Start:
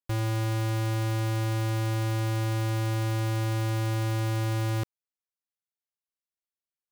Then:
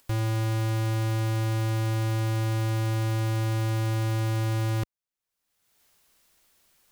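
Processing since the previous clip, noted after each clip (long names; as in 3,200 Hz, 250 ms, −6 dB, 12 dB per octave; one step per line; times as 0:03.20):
low-shelf EQ 67 Hz +6 dB
upward compression, threshold −41 dBFS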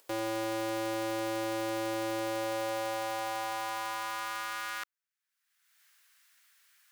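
high-pass filter sweep 440 Hz → 1,600 Hz, 0:02.16–0:05.09
level −1.5 dB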